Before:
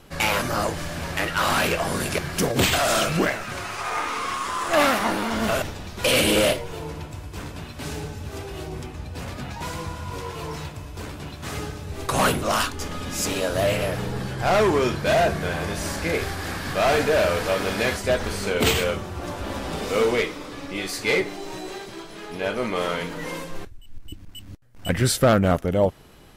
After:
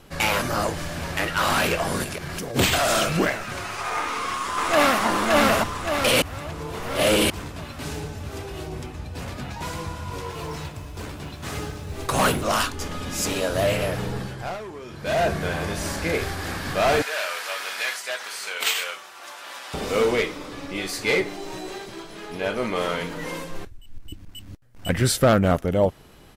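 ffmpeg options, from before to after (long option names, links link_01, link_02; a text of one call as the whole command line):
ffmpeg -i in.wav -filter_complex "[0:a]asplit=3[link_01][link_02][link_03];[link_01]afade=type=out:start_time=2.03:duration=0.02[link_04];[link_02]acompressor=threshold=-27dB:ratio=12:attack=3.2:release=140:knee=1:detection=peak,afade=type=in:start_time=2.03:duration=0.02,afade=type=out:start_time=2.54:duration=0.02[link_05];[link_03]afade=type=in:start_time=2.54:duration=0.02[link_06];[link_04][link_05][link_06]amix=inputs=3:normalize=0,asplit=2[link_07][link_08];[link_08]afade=type=in:start_time=4:duration=0.01,afade=type=out:start_time=5.06:duration=0.01,aecho=0:1:570|1140|1710|2280|2850|3420|3990:0.944061|0.47203|0.236015|0.118008|0.0590038|0.0295019|0.014751[link_09];[link_07][link_09]amix=inputs=2:normalize=0,asettb=1/sr,asplit=3[link_10][link_11][link_12];[link_10]atrim=end=10.304[link_13];[link_11]atrim=start=10.3:end=12.45,asetpts=PTS-STARTPTS,afade=type=in:duration=0.004:curve=qsin,afade=type=out:start_time=2.146:duration=0.004:curve=qsin,acrusher=bits=8:mode=log:mix=0:aa=0.000001[link_14];[link_12]atrim=start=12.446[link_15];[link_13][link_14]acrossfade=duration=0.004:curve1=hsin:curve2=qsin[link_16];[link_16][link_15]acrossfade=duration=0.004:curve1=qsin:curve2=hsin,asettb=1/sr,asplit=3[link_17][link_18][link_19];[link_17]atrim=end=17.024[link_20];[link_18]atrim=start=17.02:end=19.74,asetpts=PTS-STARTPTS,afade=type=in:duration=0.004:curve=qsin,afade=type=out:start_time=2.716:duration=0.004:curve=qsin,highpass=1200[link_21];[link_19]atrim=start=19.736[link_22];[link_20][link_21]acrossfade=duration=0.004:curve1=hsin:curve2=qsin[link_23];[link_23][link_22]acrossfade=duration=0.004:curve1=qsin:curve2=hsin,asplit=5[link_24][link_25][link_26][link_27][link_28];[link_24]atrim=end=6.222[link_29];[link_25]atrim=start=6.218:end=7.302,asetpts=PTS-STARTPTS,areverse[link_30];[link_26]atrim=start=7.298:end=14.59,asetpts=PTS-STARTPTS,afade=type=out:start_time=6.832:duration=0.46:silence=0.133352[link_31];[link_27]atrim=start=14.59:end=14.87,asetpts=PTS-STARTPTS,volume=-17.5dB[link_32];[link_28]atrim=start=14.87,asetpts=PTS-STARTPTS,afade=type=in:duration=0.46:silence=0.133352[link_33];[link_29][link_30]acrossfade=duration=0.004:curve1=hsin:curve2=hsin[link_34];[link_31][link_32][link_33]concat=n=3:v=0:a=1[link_35];[link_34][link_35]acrossfade=duration=0.004:curve1=hsin:curve2=hsin" out.wav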